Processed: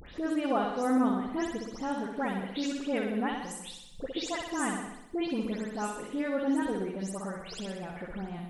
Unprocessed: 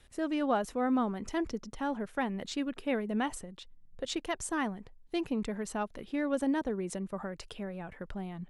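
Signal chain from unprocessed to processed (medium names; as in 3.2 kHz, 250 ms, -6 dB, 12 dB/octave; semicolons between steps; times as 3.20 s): delay that grows with frequency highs late, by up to 181 ms; bass shelf 64 Hz -8.5 dB; upward compressor, threshold -36 dBFS; flutter echo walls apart 10.7 m, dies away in 0.8 s; on a send at -13.5 dB: reverberation RT60 0.40 s, pre-delay 121 ms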